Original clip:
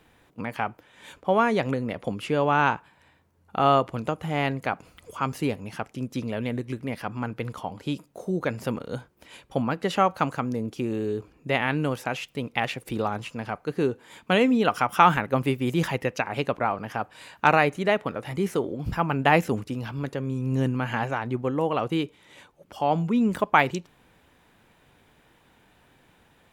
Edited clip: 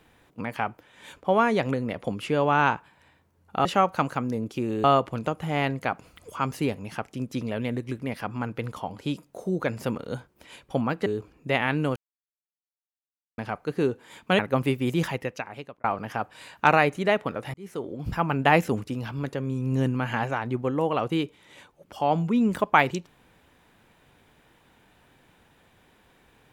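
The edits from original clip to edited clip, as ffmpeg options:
-filter_complex "[0:a]asplit=9[a][b][c][d][e][f][g][h][i];[a]atrim=end=3.652[j];[b]atrim=start=9.868:end=11.062[k];[c]atrim=start=3.648:end=9.872[l];[d]atrim=start=11.058:end=11.96,asetpts=PTS-STARTPTS,afade=t=out:st=0.898:d=0.004:c=hsin[m];[e]atrim=start=11.96:end=13.38,asetpts=PTS-STARTPTS,volume=0[n];[f]atrim=start=13.38:end=14.392,asetpts=PTS-STARTPTS,afade=t=in:d=0.004:c=hsin[o];[g]atrim=start=15.188:end=16.64,asetpts=PTS-STARTPTS,afade=t=out:st=0.512:d=0.94[p];[h]atrim=start=16.64:end=18.34,asetpts=PTS-STARTPTS,afade=t=in:d=0.004:c=hsin,afade=t=out:st=1.696:d=0.004:c=hsin[q];[i]atrim=start=18.34,asetpts=PTS-STARTPTS,afade=t=in:d=0.84:c=qsin[r];[j][k]acrossfade=d=0.004:c1=hsin:c2=hsin[s];[s][l]acrossfade=d=0.004:c1=hsin:c2=hsin[t];[m][n][o]concat=n=3:v=0:a=1[u];[t][u]acrossfade=d=0.004:c1=hsin:c2=hsin[v];[p][q][r]concat=n=3:v=0:a=1[w];[v][w]acrossfade=d=0.004:c1=hsin:c2=hsin"

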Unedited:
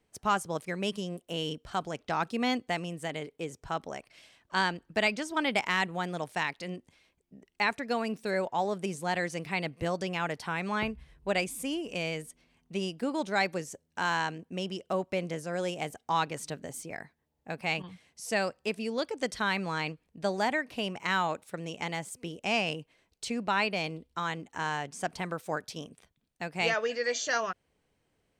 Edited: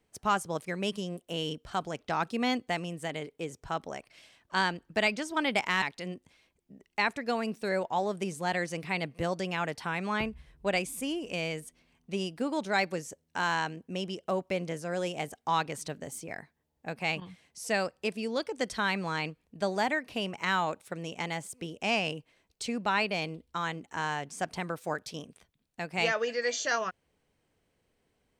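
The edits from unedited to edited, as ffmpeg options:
-filter_complex "[0:a]asplit=2[a][b];[a]atrim=end=5.822[c];[b]atrim=start=6.438[d];[c][d]acrossfade=d=0.004:c1=hsin:c2=hsin"

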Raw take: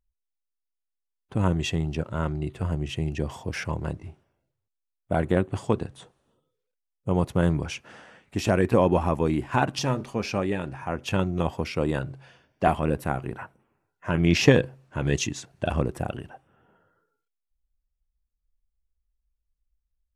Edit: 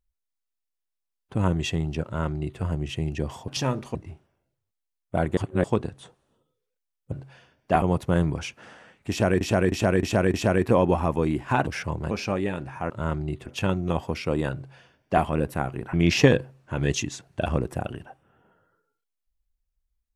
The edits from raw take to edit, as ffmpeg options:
-filter_complex "[0:a]asplit=16[a][b][c][d][e][f][g][h][i][j][k][l][m][n][o][p];[a]atrim=end=3.482[q];[b]atrim=start=9.698:end=10.172[r];[c]atrim=start=3.918:end=5.342[s];[d]atrim=start=5.338:end=5.612,asetpts=PTS-STARTPTS,areverse[t];[e]atrim=start=5.608:end=7.092[u];[f]atrim=start=12.038:end=12.742[v];[g]atrim=start=7.088:end=8.682[w];[h]atrim=start=8.368:end=8.682[x];[i]atrim=start=8.368:end=8.682[y];[j]atrim=start=8.368:end=8.682[z];[k]atrim=start=8.368:end=9.702[aa];[l]atrim=start=3.478:end=3.922[ab];[m]atrim=start=10.168:end=10.962[ac];[n]atrim=start=2.038:end=2.602[ad];[o]atrim=start=10.958:end=13.432[ae];[p]atrim=start=14.168[af];[q][r]acrossfade=d=0.004:c1=hsin:c2=hsin[ag];[ag][s]acrossfade=d=0.004:c1=hsin:c2=hsin[ah];[ah][t]acrossfade=d=0.004:c1=hsin:c2=hsin[ai];[ai][u]acrossfade=d=0.004:c1=hsin:c2=hsin[aj];[aj][v]acrossfade=d=0.004:c1=hsin:c2=hsin[ak];[ak][w]acrossfade=d=0.004:c1=hsin:c2=hsin[al];[al][x]acrossfade=d=0.004:c1=hsin:c2=hsin[am];[am][y]acrossfade=d=0.004:c1=hsin:c2=hsin[an];[an][z]acrossfade=d=0.004:c1=hsin:c2=hsin[ao];[ao][aa]acrossfade=d=0.004:c1=hsin:c2=hsin[ap];[ap][ab]acrossfade=d=0.004:c1=hsin:c2=hsin[aq];[aq][ac]acrossfade=d=0.004:c1=hsin:c2=hsin[ar];[ar][ad]acrossfade=d=0.004:c1=hsin:c2=hsin[as];[as][ae]acrossfade=d=0.004:c1=hsin:c2=hsin[at];[at][af]acrossfade=d=0.004:c1=hsin:c2=hsin"

